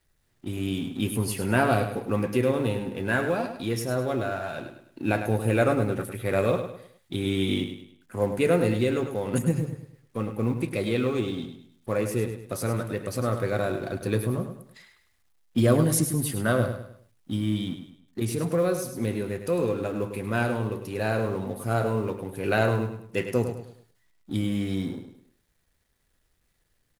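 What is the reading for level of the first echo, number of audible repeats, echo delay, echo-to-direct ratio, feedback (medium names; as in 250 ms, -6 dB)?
-9.0 dB, 4, 103 ms, -8.5 dB, 37%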